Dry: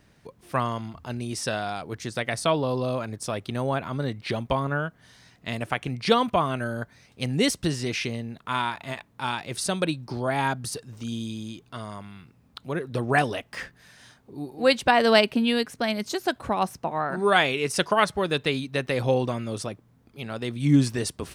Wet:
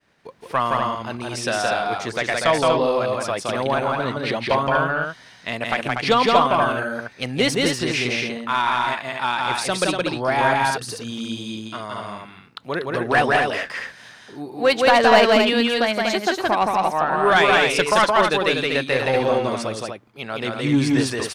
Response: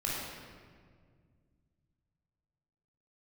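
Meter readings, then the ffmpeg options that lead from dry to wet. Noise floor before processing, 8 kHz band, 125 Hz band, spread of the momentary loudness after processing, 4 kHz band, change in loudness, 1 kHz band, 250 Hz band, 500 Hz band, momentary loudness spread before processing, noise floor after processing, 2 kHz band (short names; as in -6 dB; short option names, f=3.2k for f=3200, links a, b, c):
-60 dBFS, +3.5 dB, -0.5 dB, 14 LU, +6.0 dB, +6.0 dB, +8.0 dB, +3.0 dB, +6.5 dB, 16 LU, -47 dBFS, +8.0 dB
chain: -filter_complex "[0:a]asplit=2[a][b];[b]highpass=f=720:p=1,volume=16dB,asoftclip=type=tanh:threshold=-4dB[c];[a][c]amix=inputs=2:normalize=0,lowpass=f=2.9k:p=1,volume=-6dB,agate=range=-33dB:threshold=-49dB:ratio=3:detection=peak,aecho=1:1:169.1|242:0.794|0.562,volume=-1.5dB"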